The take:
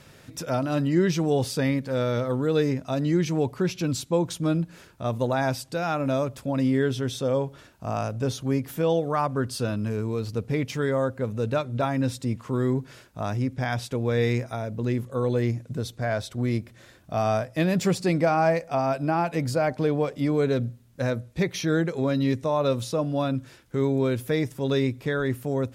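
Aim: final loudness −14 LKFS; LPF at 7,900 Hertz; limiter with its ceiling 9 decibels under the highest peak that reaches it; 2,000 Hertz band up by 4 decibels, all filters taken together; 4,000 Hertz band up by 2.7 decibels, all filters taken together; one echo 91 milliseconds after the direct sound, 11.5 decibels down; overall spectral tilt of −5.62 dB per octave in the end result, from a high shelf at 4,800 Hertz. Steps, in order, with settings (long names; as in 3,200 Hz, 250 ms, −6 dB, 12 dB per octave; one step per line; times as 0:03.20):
low-pass filter 7,900 Hz
parametric band 2,000 Hz +5 dB
parametric band 4,000 Hz +4.5 dB
high-shelf EQ 4,800 Hz −5 dB
brickwall limiter −19.5 dBFS
single-tap delay 91 ms −11.5 dB
level +15 dB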